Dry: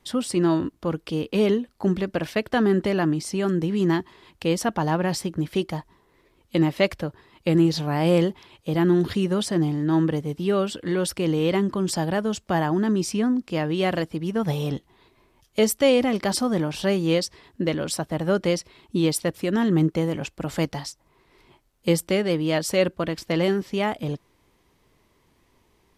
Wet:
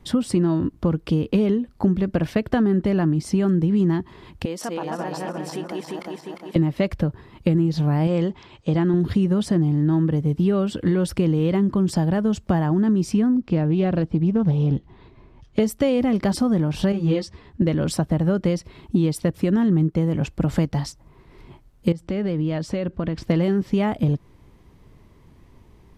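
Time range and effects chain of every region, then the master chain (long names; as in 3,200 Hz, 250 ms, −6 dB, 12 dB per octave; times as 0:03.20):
0:04.45–0:06.56: feedback delay that plays each chunk backwards 176 ms, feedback 58%, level −1 dB + downward compressor 3 to 1, threshold −33 dBFS + high-pass filter 380 Hz
0:08.07–0:08.94: Butterworth low-pass 8,200 Hz 48 dB per octave + low-shelf EQ 320 Hz −7.5 dB
0:13.36–0:15.60: low-pass filter 4,700 Hz + dynamic equaliser 2,000 Hz, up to −5 dB, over −43 dBFS, Q 0.76 + highs frequency-modulated by the lows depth 0.15 ms
0:16.92–0:17.62: high-frequency loss of the air 53 metres + string-ensemble chorus
0:21.92–0:23.24: downward compressor 4 to 1, threshold −32 dBFS + high-frequency loss of the air 72 metres
whole clip: bass and treble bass +10 dB, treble +2 dB; downward compressor 6 to 1, threshold −23 dBFS; high-shelf EQ 2,700 Hz −9.5 dB; level +6.5 dB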